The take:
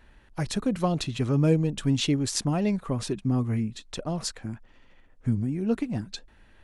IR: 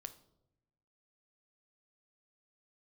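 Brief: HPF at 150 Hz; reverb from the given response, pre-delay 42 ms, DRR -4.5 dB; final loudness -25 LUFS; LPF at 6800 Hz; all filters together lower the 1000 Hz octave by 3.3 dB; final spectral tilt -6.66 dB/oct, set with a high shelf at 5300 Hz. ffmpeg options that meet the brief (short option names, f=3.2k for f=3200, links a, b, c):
-filter_complex "[0:a]highpass=150,lowpass=6.8k,equalizer=f=1k:t=o:g=-4.5,highshelf=f=5.3k:g=-7,asplit=2[a][b];[1:a]atrim=start_sample=2205,adelay=42[c];[b][c]afir=irnorm=-1:irlink=0,volume=9dB[d];[a][d]amix=inputs=2:normalize=0,volume=-1dB"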